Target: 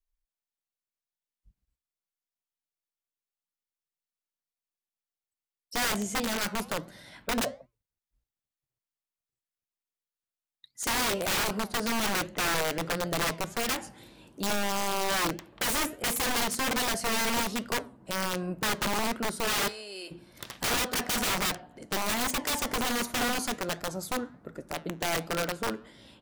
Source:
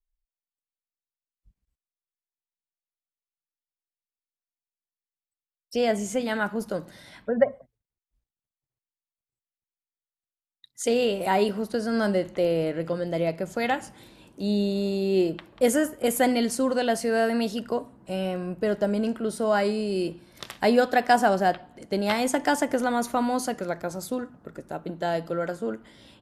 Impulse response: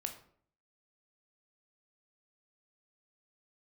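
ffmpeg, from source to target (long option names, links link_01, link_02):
-filter_complex "[0:a]asplit=3[link_01][link_02][link_03];[link_01]afade=type=out:start_time=19.67:duration=0.02[link_04];[link_02]highpass=950,afade=type=in:start_time=19.67:duration=0.02,afade=type=out:start_time=20.1:duration=0.02[link_05];[link_03]afade=type=in:start_time=20.1:duration=0.02[link_06];[link_04][link_05][link_06]amix=inputs=3:normalize=0,aeval=exprs='(mod(11.9*val(0)+1,2)-1)/11.9':channel_layout=same,flanger=delay=4.1:depth=4.5:regen=-89:speed=1.3:shape=triangular,volume=3dB"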